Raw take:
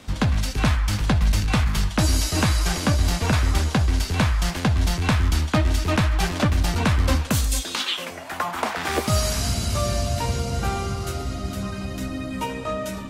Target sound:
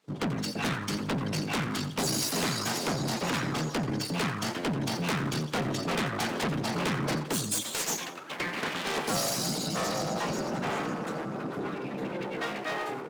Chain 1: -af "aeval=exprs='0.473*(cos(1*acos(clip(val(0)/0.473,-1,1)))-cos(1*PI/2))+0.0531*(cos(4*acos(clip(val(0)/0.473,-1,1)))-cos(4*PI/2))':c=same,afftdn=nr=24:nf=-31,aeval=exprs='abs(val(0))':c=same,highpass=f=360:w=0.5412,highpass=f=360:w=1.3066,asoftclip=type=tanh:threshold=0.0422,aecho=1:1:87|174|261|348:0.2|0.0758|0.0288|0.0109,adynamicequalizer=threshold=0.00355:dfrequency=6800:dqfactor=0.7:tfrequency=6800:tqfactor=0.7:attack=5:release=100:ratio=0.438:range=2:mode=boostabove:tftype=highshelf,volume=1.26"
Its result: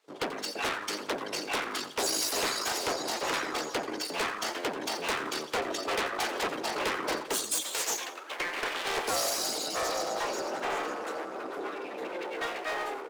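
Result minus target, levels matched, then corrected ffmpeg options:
125 Hz band -19.5 dB
-af "aeval=exprs='0.473*(cos(1*acos(clip(val(0)/0.473,-1,1)))-cos(1*PI/2))+0.0531*(cos(4*acos(clip(val(0)/0.473,-1,1)))-cos(4*PI/2))':c=same,afftdn=nr=24:nf=-31,aeval=exprs='abs(val(0))':c=same,highpass=f=160:w=0.5412,highpass=f=160:w=1.3066,asoftclip=type=tanh:threshold=0.0422,aecho=1:1:87|174|261|348:0.2|0.0758|0.0288|0.0109,adynamicequalizer=threshold=0.00355:dfrequency=6800:dqfactor=0.7:tfrequency=6800:tqfactor=0.7:attack=5:release=100:ratio=0.438:range=2:mode=boostabove:tftype=highshelf,volume=1.26"

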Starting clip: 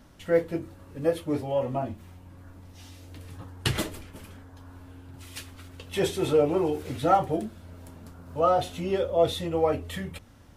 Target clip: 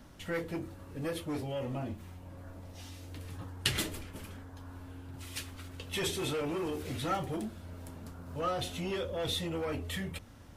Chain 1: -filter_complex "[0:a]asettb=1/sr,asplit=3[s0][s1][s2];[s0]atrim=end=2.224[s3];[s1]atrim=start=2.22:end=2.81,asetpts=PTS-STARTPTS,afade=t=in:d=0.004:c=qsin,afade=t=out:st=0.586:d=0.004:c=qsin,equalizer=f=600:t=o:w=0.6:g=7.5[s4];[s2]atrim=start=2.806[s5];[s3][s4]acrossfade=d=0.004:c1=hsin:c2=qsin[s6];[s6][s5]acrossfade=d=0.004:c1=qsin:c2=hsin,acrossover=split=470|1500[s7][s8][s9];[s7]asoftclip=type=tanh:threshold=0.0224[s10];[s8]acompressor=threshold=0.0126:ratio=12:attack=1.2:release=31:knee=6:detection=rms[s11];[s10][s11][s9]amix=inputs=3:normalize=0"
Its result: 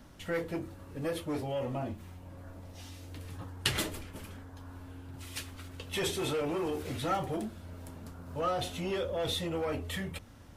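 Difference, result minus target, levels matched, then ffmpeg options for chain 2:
compression: peak gain reduction -9.5 dB
-filter_complex "[0:a]asettb=1/sr,asplit=3[s0][s1][s2];[s0]atrim=end=2.224[s3];[s1]atrim=start=2.22:end=2.81,asetpts=PTS-STARTPTS,afade=t=in:d=0.004:c=qsin,afade=t=out:st=0.586:d=0.004:c=qsin,equalizer=f=600:t=o:w=0.6:g=7.5[s4];[s2]atrim=start=2.806[s5];[s3][s4]acrossfade=d=0.004:c1=hsin:c2=qsin[s6];[s6][s5]acrossfade=d=0.004:c1=qsin:c2=hsin,acrossover=split=470|1500[s7][s8][s9];[s7]asoftclip=type=tanh:threshold=0.0224[s10];[s8]acompressor=threshold=0.00376:ratio=12:attack=1.2:release=31:knee=6:detection=rms[s11];[s10][s11][s9]amix=inputs=3:normalize=0"

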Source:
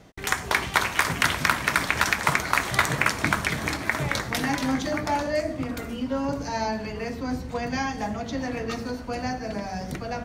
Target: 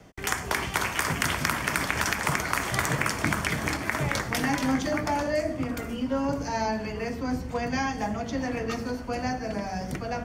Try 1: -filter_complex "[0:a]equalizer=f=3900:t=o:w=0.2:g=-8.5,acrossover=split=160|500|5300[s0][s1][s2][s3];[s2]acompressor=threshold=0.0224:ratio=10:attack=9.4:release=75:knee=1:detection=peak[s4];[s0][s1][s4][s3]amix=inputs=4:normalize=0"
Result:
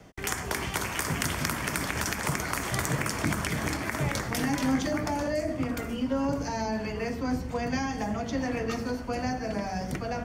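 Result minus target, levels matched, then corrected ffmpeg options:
compression: peak gain reduction +6.5 dB
-filter_complex "[0:a]equalizer=f=3900:t=o:w=0.2:g=-8.5,acrossover=split=160|500|5300[s0][s1][s2][s3];[s2]acompressor=threshold=0.0501:ratio=10:attack=9.4:release=75:knee=1:detection=peak[s4];[s0][s1][s4][s3]amix=inputs=4:normalize=0"

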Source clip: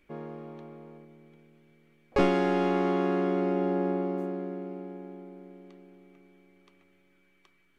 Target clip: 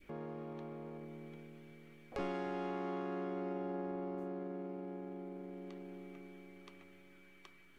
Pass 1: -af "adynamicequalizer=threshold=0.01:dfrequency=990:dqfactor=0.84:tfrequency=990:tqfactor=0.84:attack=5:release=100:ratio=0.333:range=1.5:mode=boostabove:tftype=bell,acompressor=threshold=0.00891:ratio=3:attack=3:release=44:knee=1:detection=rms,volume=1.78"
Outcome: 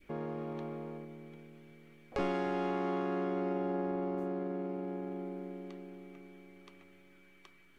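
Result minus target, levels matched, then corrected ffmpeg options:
compression: peak gain reduction -6 dB
-af "adynamicequalizer=threshold=0.01:dfrequency=990:dqfactor=0.84:tfrequency=990:tqfactor=0.84:attack=5:release=100:ratio=0.333:range=1.5:mode=boostabove:tftype=bell,acompressor=threshold=0.00316:ratio=3:attack=3:release=44:knee=1:detection=rms,volume=1.78"

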